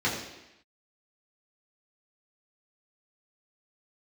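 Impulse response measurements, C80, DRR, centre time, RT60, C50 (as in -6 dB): 6.5 dB, -7.5 dB, 44 ms, 0.90 s, 4.5 dB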